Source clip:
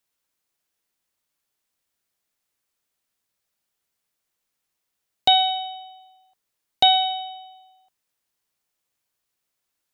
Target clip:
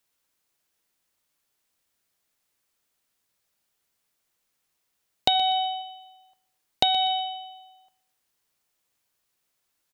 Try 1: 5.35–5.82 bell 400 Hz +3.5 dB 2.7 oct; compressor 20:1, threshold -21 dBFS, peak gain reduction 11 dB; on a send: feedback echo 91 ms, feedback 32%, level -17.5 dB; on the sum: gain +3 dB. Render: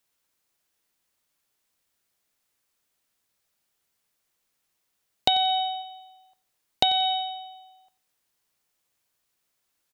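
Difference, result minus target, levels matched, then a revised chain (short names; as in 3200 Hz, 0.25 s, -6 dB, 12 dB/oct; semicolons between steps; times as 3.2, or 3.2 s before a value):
echo 31 ms early
5.35–5.82 bell 400 Hz +3.5 dB 2.7 oct; compressor 20:1, threshold -21 dBFS, peak gain reduction 11 dB; on a send: feedback echo 0.122 s, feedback 32%, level -17.5 dB; on the sum: gain +3 dB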